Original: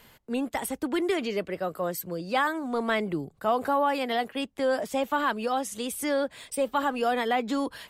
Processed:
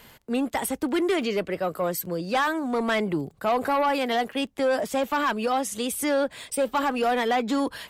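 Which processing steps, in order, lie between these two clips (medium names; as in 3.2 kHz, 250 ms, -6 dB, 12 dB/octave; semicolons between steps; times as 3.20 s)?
crackle 13 per s -44 dBFS; Chebyshev shaper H 5 -17 dB, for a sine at -13.5 dBFS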